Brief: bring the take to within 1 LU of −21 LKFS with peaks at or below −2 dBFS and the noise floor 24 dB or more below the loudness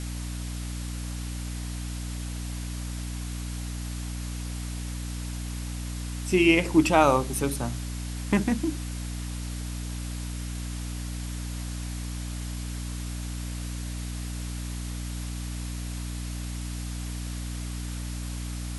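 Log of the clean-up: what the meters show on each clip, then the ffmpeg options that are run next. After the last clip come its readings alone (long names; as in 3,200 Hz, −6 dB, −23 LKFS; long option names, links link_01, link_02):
mains hum 60 Hz; hum harmonics up to 300 Hz; level of the hum −31 dBFS; background noise floor −34 dBFS; target noise floor −55 dBFS; integrated loudness −30.5 LKFS; sample peak −5.5 dBFS; target loudness −21.0 LKFS
→ -af "bandreject=frequency=60:width_type=h:width=6,bandreject=frequency=120:width_type=h:width=6,bandreject=frequency=180:width_type=h:width=6,bandreject=frequency=240:width_type=h:width=6,bandreject=frequency=300:width_type=h:width=6"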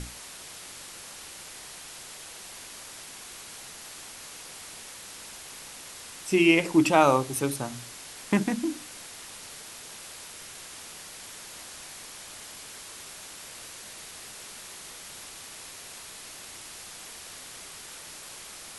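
mains hum none found; background noise floor −44 dBFS; target noise floor −56 dBFS
→ -af "afftdn=noise_reduction=12:noise_floor=-44"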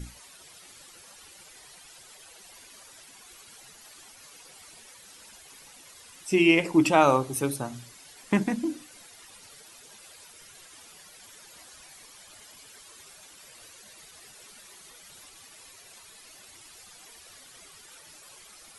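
background noise floor −51 dBFS; integrated loudness −24.0 LKFS; sample peak −6.0 dBFS; target loudness −21.0 LKFS
→ -af "volume=3dB"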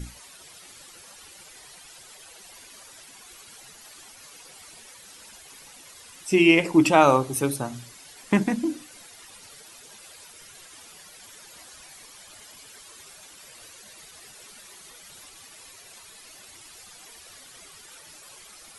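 integrated loudness −21.0 LKFS; sample peak −3.0 dBFS; background noise floor −48 dBFS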